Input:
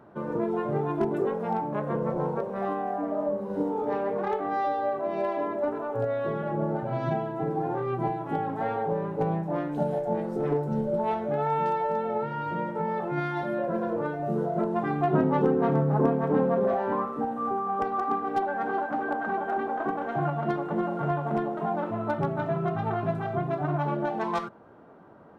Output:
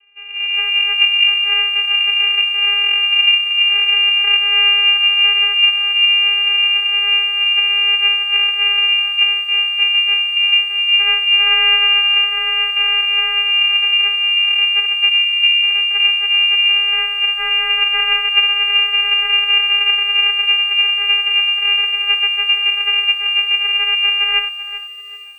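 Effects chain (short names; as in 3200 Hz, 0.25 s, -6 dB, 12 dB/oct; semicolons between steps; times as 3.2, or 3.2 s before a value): spectral delete 14.85–15.69, 820–2200 Hz; AGC gain up to 16 dB; vocoder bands 4, saw 397 Hz; inverted band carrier 3200 Hz; lo-fi delay 0.386 s, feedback 35%, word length 7-bit, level -13 dB; gain -1 dB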